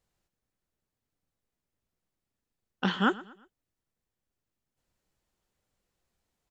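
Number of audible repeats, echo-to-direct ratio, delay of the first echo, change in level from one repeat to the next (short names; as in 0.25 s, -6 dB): 2, -19.0 dB, 0.118 s, -8.0 dB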